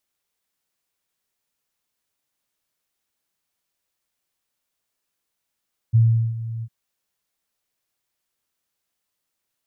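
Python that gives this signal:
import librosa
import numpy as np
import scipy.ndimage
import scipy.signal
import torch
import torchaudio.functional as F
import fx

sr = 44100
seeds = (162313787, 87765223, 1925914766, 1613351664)

y = fx.adsr_tone(sr, wave='sine', hz=114.0, attack_ms=24.0, decay_ms=388.0, sustain_db=-15.5, held_s=0.7, release_ms=54.0, level_db=-10.5)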